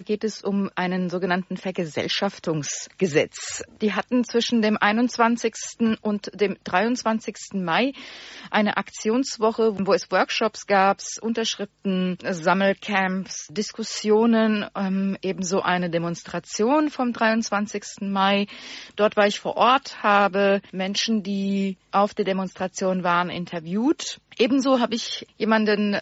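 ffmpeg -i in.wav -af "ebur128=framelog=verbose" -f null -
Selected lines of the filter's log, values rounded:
Integrated loudness:
  I:         -23.1 LUFS
  Threshold: -33.2 LUFS
Loudness range:
  LRA:         3.3 LU
  Threshold: -43.1 LUFS
  LRA low:   -24.7 LUFS
  LRA high:  -21.4 LUFS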